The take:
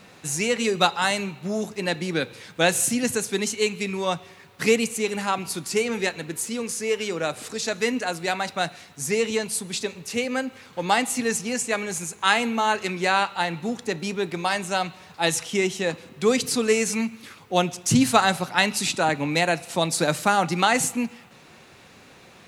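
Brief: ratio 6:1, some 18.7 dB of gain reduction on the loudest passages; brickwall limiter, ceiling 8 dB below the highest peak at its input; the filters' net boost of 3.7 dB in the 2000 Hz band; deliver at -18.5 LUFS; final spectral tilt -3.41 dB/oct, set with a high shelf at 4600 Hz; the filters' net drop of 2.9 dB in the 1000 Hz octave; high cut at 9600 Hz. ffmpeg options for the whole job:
-af "lowpass=9.6k,equalizer=f=1k:t=o:g=-6,equalizer=f=2k:t=o:g=7.5,highshelf=f=4.6k:g=-5,acompressor=threshold=-35dB:ratio=6,volume=20.5dB,alimiter=limit=-6.5dB:level=0:latency=1"

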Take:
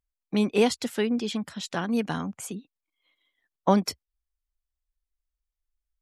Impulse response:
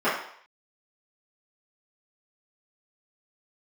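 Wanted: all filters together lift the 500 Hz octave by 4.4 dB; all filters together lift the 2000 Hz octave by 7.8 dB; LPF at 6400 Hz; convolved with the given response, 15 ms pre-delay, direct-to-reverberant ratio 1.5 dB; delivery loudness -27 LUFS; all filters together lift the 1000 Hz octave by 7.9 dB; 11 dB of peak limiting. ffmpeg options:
-filter_complex "[0:a]lowpass=6.4k,equalizer=f=500:t=o:g=3.5,equalizer=f=1k:t=o:g=7,equalizer=f=2k:t=o:g=8,alimiter=limit=-12.5dB:level=0:latency=1,asplit=2[a][b];[1:a]atrim=start_sample=2205,adelay=15[c];[b][c]afir=irnorm=-1:irlink=0,volume=-19dB[d];[a][d]amix=inputs=2:normalize=0,volume=-2.5dB"

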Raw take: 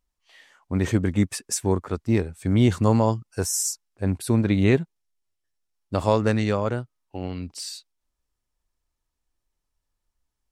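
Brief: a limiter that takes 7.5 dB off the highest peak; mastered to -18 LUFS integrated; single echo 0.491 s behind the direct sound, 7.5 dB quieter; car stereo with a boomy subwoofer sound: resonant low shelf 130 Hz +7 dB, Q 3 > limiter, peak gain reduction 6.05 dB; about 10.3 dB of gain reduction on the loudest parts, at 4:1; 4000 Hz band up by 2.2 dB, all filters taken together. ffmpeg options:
-af "equalizer=f=4k:t=o:g=3,acompressor=threshold=-27dB:ratio=4,alimiter=limit=-22dB:level=0:latency=1,lowshelf=f=130:t=q:w=3:g=7,aecho=1:1:491:0.422,volume=12dB,alimiter=limit=-8.5dB:level=0:latency=1"

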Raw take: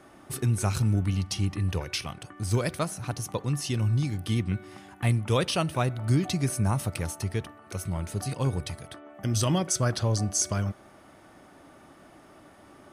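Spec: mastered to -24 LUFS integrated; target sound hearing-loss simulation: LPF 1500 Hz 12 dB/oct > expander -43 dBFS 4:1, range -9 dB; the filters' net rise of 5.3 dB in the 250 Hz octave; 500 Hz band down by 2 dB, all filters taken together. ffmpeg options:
-af "lowpass=1.5k,equalizer=f=250:t=o:g=8.5,equalizer=f=500:t=o:g=-5.5,agate=range=-9dB:threshold=-43dB:ratio=4,volume=3dB"

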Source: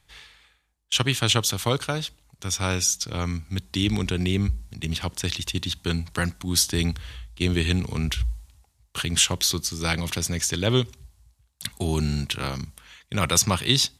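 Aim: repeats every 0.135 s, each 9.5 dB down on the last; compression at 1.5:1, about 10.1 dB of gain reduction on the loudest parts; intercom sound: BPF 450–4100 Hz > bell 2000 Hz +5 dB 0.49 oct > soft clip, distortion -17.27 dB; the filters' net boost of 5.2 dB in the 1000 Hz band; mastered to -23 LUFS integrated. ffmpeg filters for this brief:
-af "equalizer=f=1k:t=o:g=6.5,acompressor=threshold=-44dB:ratio=1.5,highpass=450,lowpass=4.1k,equalizer=f=2k:t=o:w=0.49:g=5,aecho=1:1:135|270|405|540:0.335|0.111|0.0365|0.012,asoftclip=threshold=-21.5dB,volume=14dB"

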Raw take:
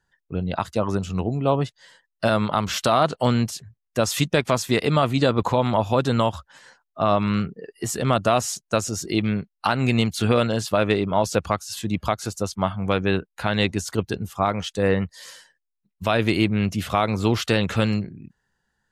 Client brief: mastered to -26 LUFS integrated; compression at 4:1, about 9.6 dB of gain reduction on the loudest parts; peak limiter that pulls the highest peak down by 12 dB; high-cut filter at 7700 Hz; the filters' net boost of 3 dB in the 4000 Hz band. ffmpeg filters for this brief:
-af "lowpass=7.7k,equalizer=f=4k:t=o:g=4,acompressor=threshold=-26dB:ratio=4,volume=8.5dB,alimiter=limit=-14dB:level=0:latency=1"

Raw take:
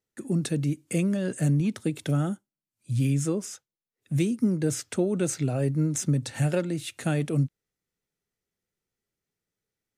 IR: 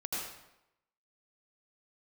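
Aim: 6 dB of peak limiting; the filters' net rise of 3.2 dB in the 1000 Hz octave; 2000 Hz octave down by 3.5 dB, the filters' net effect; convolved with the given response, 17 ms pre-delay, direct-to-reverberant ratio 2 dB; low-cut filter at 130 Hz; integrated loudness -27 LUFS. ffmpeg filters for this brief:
-filter_complex "[0:a]highpass=130,equalizer=f=1k:t=o:g=7,equalizer=f=2k:t=o:g=-7.5,alimiter=limit=-20dB:level=0:latency=1,asplit=2[a][b];[1:a]atrim=start_sample=2205,adelay=17[c];[b][c]afir=irnorm=-1:irlink=0,volume=-5.5dB[d];[a][d]amix=inputs=2:normalize=0,volume=1dB"

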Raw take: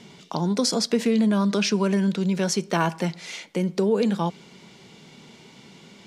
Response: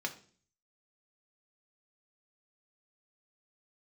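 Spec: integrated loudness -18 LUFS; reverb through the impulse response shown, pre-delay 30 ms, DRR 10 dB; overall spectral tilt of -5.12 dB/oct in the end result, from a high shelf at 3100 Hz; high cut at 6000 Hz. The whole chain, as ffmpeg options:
-filter_complex "[0:a]lowpass=6k,highshelf=f=3.1k:g=3,asplit=2[a][b];[1:a]atrim=start_sample=2205,adelay=30[c];[b][c]afir=irnorm=-1:irlink=0,volume=-12.5dB[d];[a][d]amix=inputs=2:normalize=0,volume=5dB"

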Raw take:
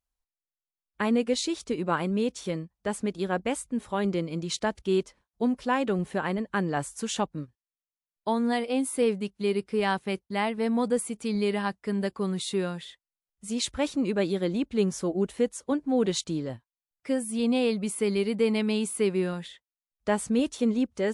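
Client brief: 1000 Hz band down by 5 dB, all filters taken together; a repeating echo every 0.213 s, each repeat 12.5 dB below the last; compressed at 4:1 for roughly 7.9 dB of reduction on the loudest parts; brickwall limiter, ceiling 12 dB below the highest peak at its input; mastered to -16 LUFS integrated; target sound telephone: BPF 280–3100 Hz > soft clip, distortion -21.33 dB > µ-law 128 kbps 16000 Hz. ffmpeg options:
-af "equalizer=f=1k:t=o:g=-6.5,acompressor=threshold=-30dB:ratio=4,alimiter=level_in=8.5dB:limit=-24dB:level=0:latency=1,volume=-8.5dB,highpass=280,lowpass=3.1k,aecho=1:1:213|426|639:0.237|0.0569|0.0137,asoftclip=threshold=-33.5dB,volume=29dB" -ar 16000 -c:a pcm_mulaw

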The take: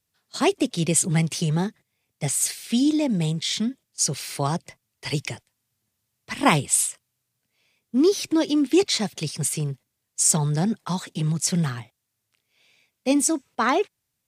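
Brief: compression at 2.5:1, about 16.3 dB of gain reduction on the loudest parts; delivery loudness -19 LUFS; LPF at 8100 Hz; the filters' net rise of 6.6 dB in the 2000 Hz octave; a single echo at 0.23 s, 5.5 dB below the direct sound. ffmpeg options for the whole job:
-af "lowpass=8.1k,equalizer=f=2k:t=o:g=8,acompressor=threshold=-36dB:ratio=2.5,aecho=1:1:230:0.531,volume=14.5dB"

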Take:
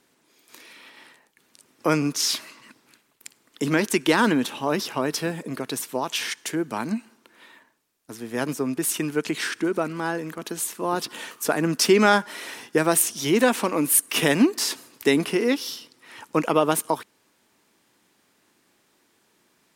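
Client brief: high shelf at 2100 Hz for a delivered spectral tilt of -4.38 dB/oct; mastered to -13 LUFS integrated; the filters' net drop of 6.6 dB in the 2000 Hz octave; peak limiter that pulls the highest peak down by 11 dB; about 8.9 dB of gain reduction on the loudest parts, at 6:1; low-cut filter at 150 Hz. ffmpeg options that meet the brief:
-af "highpass=150,equalizer=f=2k:t=o:g=-4.5,highshelf=f=2.1k:g=-8,acompressor=threshold=-23dB:ratio=6,volume=20.5dB,alimiter=limit=-2.5dB:level=0:latency=1"

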